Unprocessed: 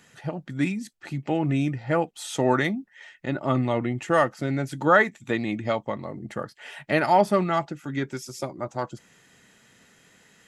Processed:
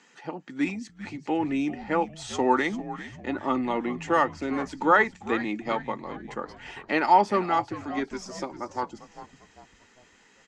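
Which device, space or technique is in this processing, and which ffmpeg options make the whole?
television speaker: -filter_complex "[0:a]highpass=f=230:w=0.5412,highpass=f=230:w=1.3066,equalizer=f=620:t=q:w=4:g=-9,equalizer=f=900:t=q:w=4:g=5,equalizer=f=1.6k:t=q:w=4:g=-3,equalizer=f=3.6k:t=q:w=4:g=-4,lowpass=f=6.9k:w=0.5412,lowpass=f=6.9k:w=1.3066,asplit=5[a][b][c][d][e];[b]adelay=398,afreqshift=-86,volume=-14dB[f];[c]adelay=796,afreqshift=-172,volume=-21.7dB[g];[d]adelay=1194,afreqshift=-258,volume=-29.5dB[h];[e]adelay=1592,afreqshift=-344,volume=-37.2dB[i];[a][f][g][h][i]amix=inputs=5:normalize=0"

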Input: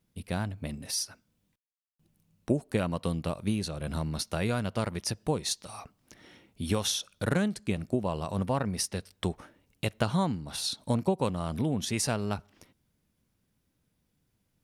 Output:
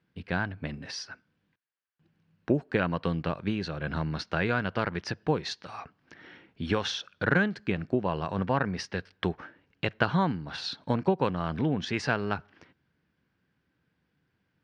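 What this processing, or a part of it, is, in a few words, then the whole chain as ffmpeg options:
guitar cabinet: -af "highpass=93,equalizer=f=110:t=q:w=4:g=-5,equalizer=f=220:t=q:w=4:g=-5,equalizer=f=600:t=q:w=4:g=-4,equalizer=f=1.6k:t=q:w=4:g=9,equalizer=f=3.7k:t=q:w=4:g=-5,lowpass=f=4.2k:w=0.5412,lowpass=f=4.2k:w=1.3066,volume=3.5dB"

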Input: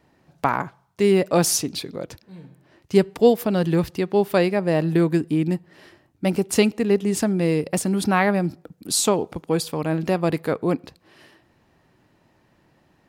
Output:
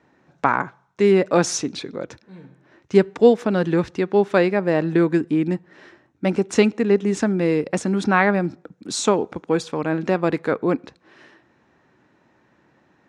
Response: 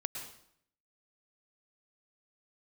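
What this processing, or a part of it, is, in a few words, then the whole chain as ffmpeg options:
car door speaker: -af "highpass=94,equalizer=f=100:t=q:w=4:g=-8,equalizer=f=160:t=q:w=4:g=-5,equalizer=f=670:t=q:w=4:g=-3,equalizer=f=1.5k:t=q:w=4:g=4,equalizer=f=3k:t=q:w=4:g=-5,equalizer=f=4.7k:t=q:w=4:g=-9,lowpass=f=6.5k:w=0.5412,lowpass=f=6.5k:w=1.3066,volume=2.5dB"

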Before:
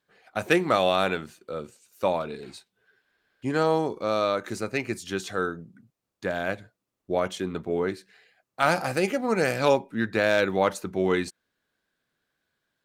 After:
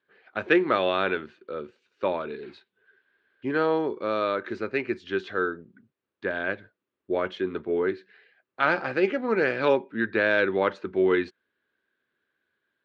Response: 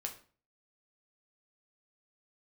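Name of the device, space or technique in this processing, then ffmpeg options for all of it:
guitar cabinet: -af "highpass=92,equalizer=f=120:t=q:w=4:g=-6,equalizer=f=170:t=q:w=4:g=-7,equalizer=f=380:t=q:w=4:g=6,equalizer=f=730:t=q:w=4:g=-6,equalizer=f=1.6k:t=q:w=4:g=5,lowpass=f=3.6k:w=0.5412,lowpass=f=3.6k:w=1.3066,volume=-1dB"

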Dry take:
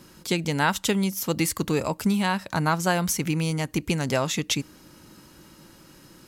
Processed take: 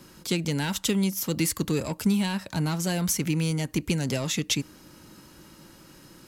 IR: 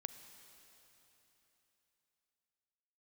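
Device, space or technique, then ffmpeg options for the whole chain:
one-band saturation: -filter_complex "[0:a]acrossover=split=390|2500[a][b][c];[b]asoftclip=type=tanh:threshold=-34dB[d];[a][d][c]amix=inputs=3:normalize=0"

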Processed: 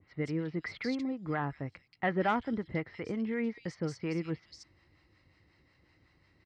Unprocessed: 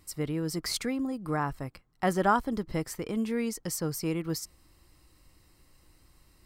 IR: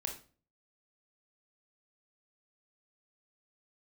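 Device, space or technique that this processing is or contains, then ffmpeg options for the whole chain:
guitar amplifier with harmonic tremolo: -filter_complex "[0:a]acrossover=split=3300[a][b];[b]adelay=180[c];[a][c]amix=inputs=2:normalize=0,acrossover=split=620[d][e];[d]aeval=exprs='val(0)*(1-0.5/2+0.5/2*cos(2*PI*5.5*n/s))':c=same[f];[e]aeval=exprs='val(0)*(1-0.5/2-0.5/2*cos(2*PI*5.5*n/s))':c=same[g];[f][g]amix=inputs=2:normalize=0,asoftclip=type=tanh:threshold=-18.5dB,highpass=88,equalizer=f=94:t=q:w=4:g=6,equalizer=f=1.1k:t=q:w=4:g=-4,equalizer=f=2k:t=q:w=4:g=9,lowpass=f=4.5k:w=0.5412,lowpass=f=4.5k:w=1.3066,adynamicequalizer=threshold=0.00447:dfrequency=1700:dqfactor=0.7:tfrequency=1700:tqfactor=0.7:attack=5:release=100:ratio=0.375:range=2.5:mode=cutabove:tftype=highshelf"

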